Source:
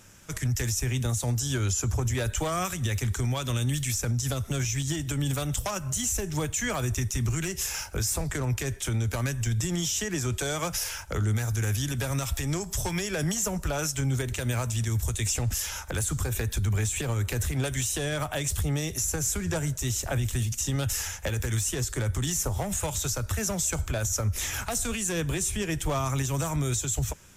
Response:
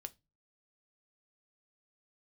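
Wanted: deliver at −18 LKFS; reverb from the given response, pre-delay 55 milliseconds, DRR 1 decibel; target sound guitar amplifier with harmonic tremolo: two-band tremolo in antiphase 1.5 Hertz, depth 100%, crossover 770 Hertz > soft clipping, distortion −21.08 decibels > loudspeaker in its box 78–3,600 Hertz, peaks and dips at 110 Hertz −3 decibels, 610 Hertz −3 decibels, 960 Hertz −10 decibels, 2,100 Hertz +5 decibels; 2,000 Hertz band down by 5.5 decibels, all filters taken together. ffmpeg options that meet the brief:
-filter_complex "[0:a]equalizer=frequency=2000:width_type=o:gain=-9,asplit=2[link_01][link_02];[1:a]atrim=start_sample=2205,adelay=55[link_03];[link_02][link_03]afir=irnorm=-1:irlink=0,volume=3.5dB[link_04];[link_01][link_04]amix=inputs=2:normalize=0,acrossover=split=770[link_05][link_06];[link_05]aeval=exprs='val(0)*(1-1/2+1/2*cos(2*PI*1.5*n/s))':channel_layout=same[link_07];[link_06]aeval=exprs='val(0)*(1-1/2-1/2*cos(2*PI*1.5*n/s))':channel_layout=same[link_08];[link_07][link_08]amix=inputs=2:normalize=0,asoftclip=threshold=-18dB,highpass=78,equalizer=frequency=110:width_type=q:width=4:gain=-3,equalizer=frequency=610:width_type=q:width=4:gain=-3,equalizer=frequency=960:width_type=q:width=4:gain=-10,equalizer=frequency=2100:width_type=q:width=4:gain=5,lowpass=frequency=3600:width=0.5412,lowpass=frequency=3600:width=1.3066,volume=17.5dB"

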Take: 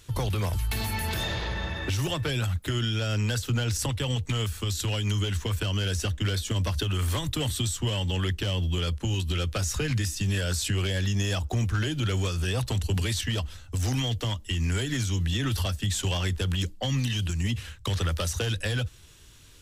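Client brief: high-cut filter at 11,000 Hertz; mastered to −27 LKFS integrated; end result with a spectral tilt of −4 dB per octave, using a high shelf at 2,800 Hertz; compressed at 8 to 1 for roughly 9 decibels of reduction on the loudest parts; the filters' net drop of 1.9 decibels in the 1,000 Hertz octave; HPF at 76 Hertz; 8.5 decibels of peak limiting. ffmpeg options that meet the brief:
ffmpeg -i in.wav -af "highpass=76,lowpass=11000,equalizer=frequency=1000:width_type=o:gain=-3,highshelf=frequency=2800:gain=3,acompressor=threshold=-33dB:ratio=8,volume=10.5dB,alimiter=limit=-18dB:level=0:latency=1" out.wav

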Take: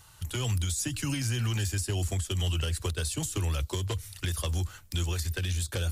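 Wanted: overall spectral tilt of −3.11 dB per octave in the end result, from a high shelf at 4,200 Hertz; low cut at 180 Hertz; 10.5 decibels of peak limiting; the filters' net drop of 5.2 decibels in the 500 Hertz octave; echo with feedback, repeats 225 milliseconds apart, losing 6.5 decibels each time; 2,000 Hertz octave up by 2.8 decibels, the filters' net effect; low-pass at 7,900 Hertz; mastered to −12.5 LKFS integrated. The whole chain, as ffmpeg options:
ffmpeg -i in.wav -af "highpass=180,lowpass=7900,equalizer=frequency=500:width_type=o:gain=-7,equalizer=frequency=2000:width_type=o:gain=5.5,highshelf=frequency=4200:gain=-5,alimiter=level_in=6.5dB:limit=-24dB:level=0:latency=1,volume=-6.5dB,aecho=1:1:225|450|675|900|1125|1350:0.473|0.222|0.105|0.0491|0.0231|0.0109,volume=26.5dB" out.wav

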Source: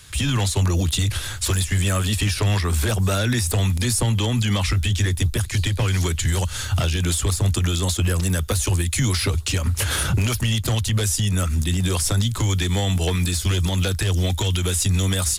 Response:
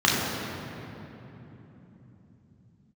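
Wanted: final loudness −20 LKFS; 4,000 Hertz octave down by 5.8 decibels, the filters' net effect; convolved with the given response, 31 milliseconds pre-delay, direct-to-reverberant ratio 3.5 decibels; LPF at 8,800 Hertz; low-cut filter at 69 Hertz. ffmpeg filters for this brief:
-filter_complex "[0:a]highpass=69,lowpass=8800,equalizer=frequency=4000:width_type=o:gain=-7.5,asplit=2[link_01][link_02];[1:a]atrim=start_sample=2205,adelay=31[link_03];[link_02][link_03]afir=irnorm=-1:irlink=0,volume=-23dB[link_04];[link_01][link_04]amix=inputs=2:normalize=0,volume=-1dB"

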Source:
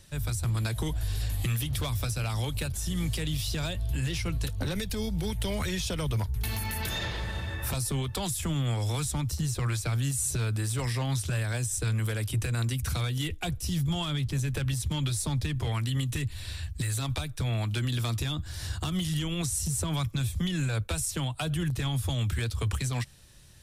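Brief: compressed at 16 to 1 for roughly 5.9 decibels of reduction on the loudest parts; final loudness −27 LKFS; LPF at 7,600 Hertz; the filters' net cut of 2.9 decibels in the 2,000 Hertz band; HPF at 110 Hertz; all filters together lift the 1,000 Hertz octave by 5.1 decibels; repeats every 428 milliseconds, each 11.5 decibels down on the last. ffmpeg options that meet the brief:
ffmpeg -i in.wav -af "highpass=110,lowpass=7600,equalizer=frequency=1000:width_type=o:gain=8,equalizer=frequency=2000:width_type=o:gain=-6.5,acompressor=threshold=-32dB:ratio=16,aecho=1:1:428|856|1284:0.266|0.0718|0.0194,volume=9.5dB" out.wav

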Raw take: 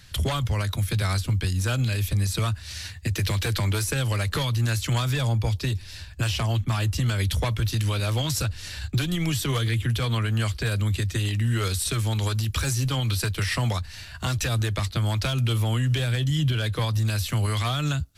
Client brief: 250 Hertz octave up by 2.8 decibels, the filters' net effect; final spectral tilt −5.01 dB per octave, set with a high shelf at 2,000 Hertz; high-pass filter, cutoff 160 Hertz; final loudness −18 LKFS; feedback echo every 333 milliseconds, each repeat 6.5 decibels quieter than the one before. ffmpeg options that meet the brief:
ffmpeg -i in.wav -af "highpass=160,equalizer=frequency=250:width_type=o:gain=6,highshelf=frequency=2000:gain=-3.5,aecho=1:1:333|666|999|1332|1665|1998:0.473|0.222|0.105|0.0491|0.0231|0.0109,volume=9.5dB" out.wav

